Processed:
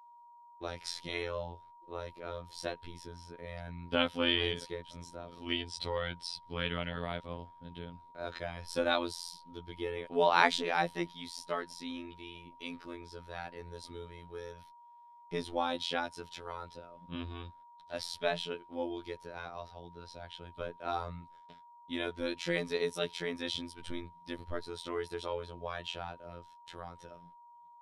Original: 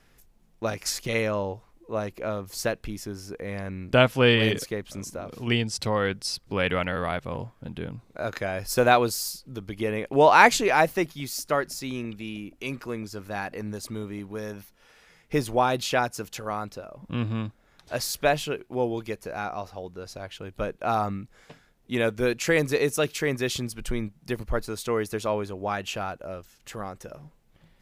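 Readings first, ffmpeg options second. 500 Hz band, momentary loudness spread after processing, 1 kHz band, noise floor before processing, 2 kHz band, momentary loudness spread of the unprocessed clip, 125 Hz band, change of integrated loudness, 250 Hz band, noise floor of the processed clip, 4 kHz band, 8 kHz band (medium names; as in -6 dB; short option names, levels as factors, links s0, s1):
-11.0 dB, 17 LU, -10.5 dB, -61 dBFS, -10.5 dB, 17 LU, -14.0 dB, -10.5 dB, -11.0 dB, -57 dBFS, -5.0 dB, -16.0 dB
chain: -af "lowpass=f=9000:w=0.5412,lowpass=f=9000:w=1.3066,afftfilt=real='hypot(re,im)*cos(PI*b)':imag='0':win_size=2048:overlap=0.75,superequalizer=13b=2.24:15b=0.398,agate=range=0.0501:threshold=0.002:ratio=16:detection=peak,aeval=exprs='val(0)+0.00447*sin(2*PI*950*n/s)':c=same,volume=0.447"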